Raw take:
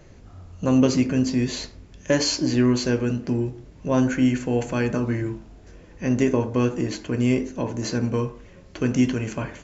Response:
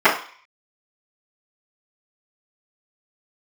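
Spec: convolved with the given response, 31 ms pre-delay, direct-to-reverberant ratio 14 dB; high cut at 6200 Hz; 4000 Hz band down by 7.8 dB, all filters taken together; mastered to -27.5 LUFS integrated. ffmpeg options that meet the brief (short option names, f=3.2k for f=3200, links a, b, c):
-filter_complex "[0:a]lowpass=6.2k,equalizer=f=4k:t=o:g=-8.5,asplit=2[a][b];[1:a]atrim=start_sample=2205,adelay=31[c];[b][c]afir=irnorm=-1:irlink=0,volume=-40dB[d];[a][d]amix=inputs=2:normalize=0,volume=-4dB"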